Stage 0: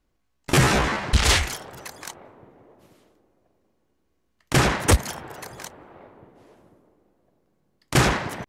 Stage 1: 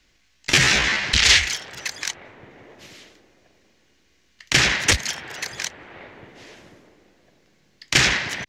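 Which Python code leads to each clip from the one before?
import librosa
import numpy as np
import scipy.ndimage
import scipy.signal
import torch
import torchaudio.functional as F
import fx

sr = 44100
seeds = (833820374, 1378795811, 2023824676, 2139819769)

y = fx.band_shelf(x, sr, hz=3400.0, db=14.5, octaves=2.4)
y = fx.band_squash(y, sr, depth_pct=40)
y = F.gain(torch.from_numpy(y), -5.5).numpy()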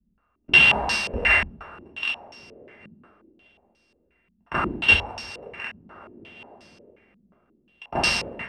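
y = np.r_[np.sort(x[:len(x) // 16 * 16].reshape(-1, 16), axis=1).ravel(), x[len(x) // 16 * 16:]]
y = fx.rev_double_slope(y, sr, seeds[0], early_s=0.47, late_s=1.9, knee_db=-18, drr_db=-0.5)
y = fx.filter_held_lowpass(y, sr, hz=5.6, low_hz=200.0, high_hz=5100.0)
y = F.gain(torch.from_numpy(y), -8.0).numpy()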